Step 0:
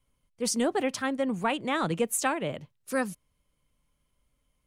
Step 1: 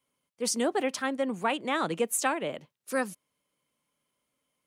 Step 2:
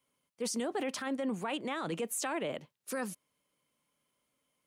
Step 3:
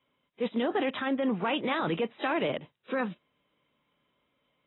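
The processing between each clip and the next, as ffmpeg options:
-af "highpass=240"
-af "alimiter=level_in=1.41:limit=0.0631:level=0:latency=1:release=14,volume=0.708"
-af "volume=2" -ar 22050 -c:a aac -b:a 16k

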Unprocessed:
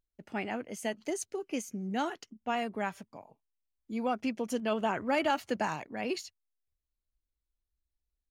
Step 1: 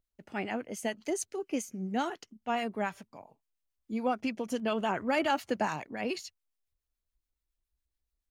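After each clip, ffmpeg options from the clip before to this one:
-filter_complex "[0:a]acrossover=split=1100[s0][s1];[s0]aeval=exprs='val(0)*(1-0.5/2+0.5/2*cos(2*PI*7.1*n/s))':c=same[s2];[s1]aeval=exprs='val(0)*(1-0.5/2-0.5/2*cos(2*PI*7.1*n/s))':c=same[s3];[s2][s3]amix=inputs=2:normalize=0,volume=1.41"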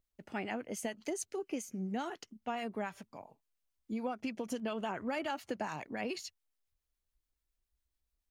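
-af "acompressor=threshold=0.02:ratio=5"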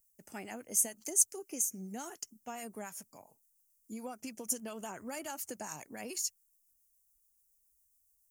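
-af "aexciter=amount=12:drive=6.6:freq=5700,volume=0.501"

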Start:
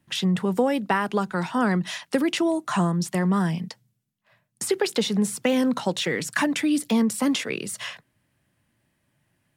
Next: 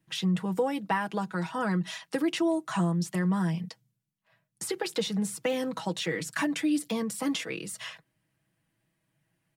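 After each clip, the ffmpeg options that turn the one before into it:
-af "aecho=1:1:6.2:0.65,volume=0.422"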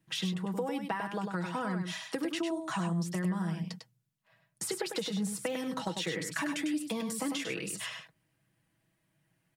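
-filter_complex "[0:a]acompressor=threshold=0.0282:ratio=6,asplit=2[s0][s1];[s1]aecho=0:1:100:0.501[s2];[s0][s2]amix=inputs=2:normalize=0"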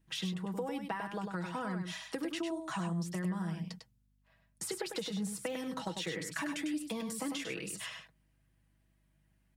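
-af "aeval=exprs='val(0)+0.000398*(sin(2*PI*50*n/s)+sin(2*PI*2*50*n/s)/2+sin(2*PI*3*50*n/s)/3+sin(2*PI*4*50*n/s)/4+sin(2*PI*5*50*n/s)/5)':c=same,volume=0.668"

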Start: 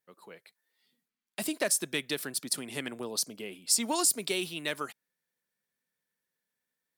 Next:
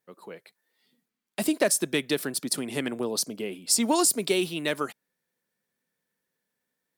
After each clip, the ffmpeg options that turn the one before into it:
-af "equalizer=f=300:w=0.36:g=6.5,volume=1.33"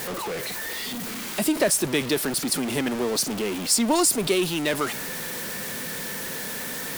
-af "aeval=exprs='val(0)+0.5*0.0531*sgn(val(0))':c=same"

